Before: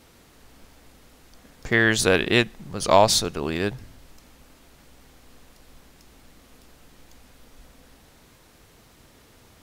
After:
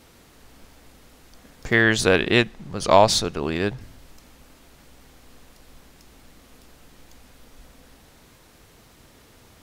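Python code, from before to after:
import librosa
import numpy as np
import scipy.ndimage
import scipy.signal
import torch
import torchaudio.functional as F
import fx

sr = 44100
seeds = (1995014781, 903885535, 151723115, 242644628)

y = fx.high_shelf(x, sr, hz=8700.0, db=-10.0, at=(1.81, 3.81))
y = y * 10.0 ** (1.5 / 20.0)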